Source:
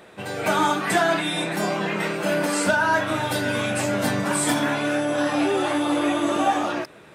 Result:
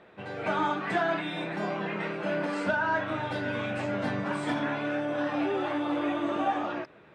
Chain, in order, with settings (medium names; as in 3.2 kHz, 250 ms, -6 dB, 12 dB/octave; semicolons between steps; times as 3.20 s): low-pass 2.9 kHz 12 dB/octave; trim -7 dB